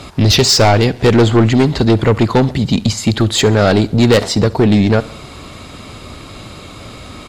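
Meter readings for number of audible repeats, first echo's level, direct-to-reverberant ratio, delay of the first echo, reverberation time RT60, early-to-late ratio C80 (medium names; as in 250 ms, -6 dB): 3, -21.0 dB, no reverb, 68 ms, no reverb, no reverb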